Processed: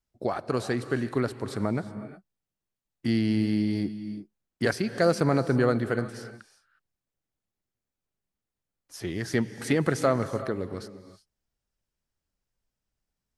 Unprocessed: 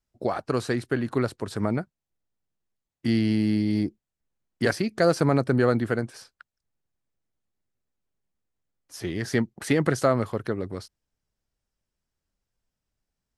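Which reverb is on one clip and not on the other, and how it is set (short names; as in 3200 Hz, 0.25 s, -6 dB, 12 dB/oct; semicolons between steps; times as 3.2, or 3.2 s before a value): non-linear reverb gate 0.39 s rising, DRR 11.5 dB; gain -2 dB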